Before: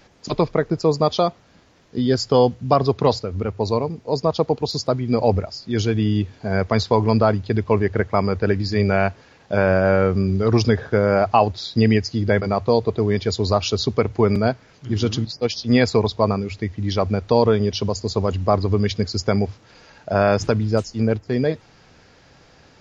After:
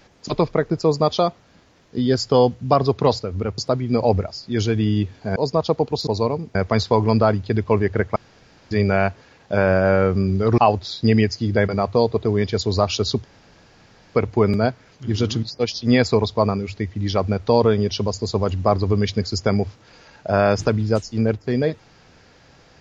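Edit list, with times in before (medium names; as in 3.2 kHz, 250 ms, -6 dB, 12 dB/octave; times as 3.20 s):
3.58–4.06 s: swap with 4.77–6.55 s
8.16–8.71 s: room tone
10.58–11.31 s: delete
13.97 s: insert room tone 0.91 s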